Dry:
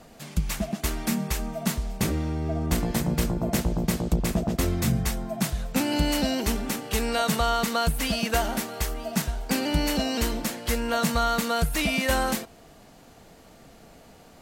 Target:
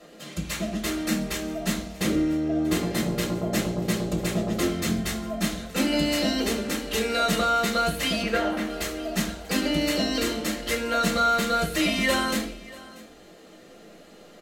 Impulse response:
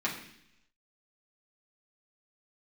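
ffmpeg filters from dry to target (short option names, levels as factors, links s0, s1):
-filter_complex "[0:a]asettb=1/sr,asplit=3[s0][s1][s2];[s0]atrim=end=8.224[s3];[s1]atrim=start=8.22:end=8.7,asetpts=PTS-STARTPTS,afade=t=in:d=0.004:c=qsin,afade=t=out:st=0.476:d=0.004:c=qsin,bass=f=250:g=-2,treble=f=4000:g=-14[s4];[s2]atrim=start=8.696[s5];[s3][s4]acrossfade=d=0.004:c1=hsin:c2=qsin[s6];[s6][s5]acrossfade=d=0.004:c1=qsin:c2=hsin,aecho=1:1:636:0.0944[s7];[1:a]atrim=start_sample=2205,asetrate=74970,aresample=44100[s8];[s7][s8]afir=irnorm=-1:irlink=0"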